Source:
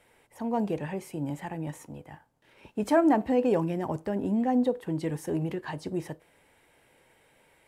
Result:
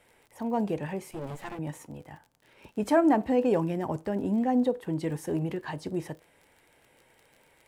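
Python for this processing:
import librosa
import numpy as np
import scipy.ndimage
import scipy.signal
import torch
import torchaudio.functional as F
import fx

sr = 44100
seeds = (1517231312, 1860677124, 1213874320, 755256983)

y = fx.lower_of_two(x, sr, delay_ms=8.6, at=(1.11, 1.59))
y = fx.dmg_crackle(y, sr, seeds[0], per_s=40.0, level_db=-44.0)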